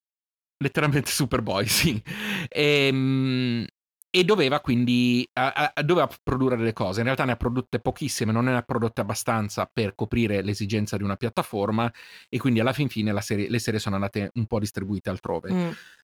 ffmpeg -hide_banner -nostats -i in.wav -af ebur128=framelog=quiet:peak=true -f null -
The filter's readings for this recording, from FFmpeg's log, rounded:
Integrated loudness:
  I:         -24.7 LUFS
  Threshold: -34.8 LUFS
Loudness range:
  LRA:         3.8 LU
  Threshold: -44.6 LUFS
  LRA low:   -26.5 LUFS
  LRA high:  -22.8 LUFS
True peak:
  Peak:       -9.4 dBFS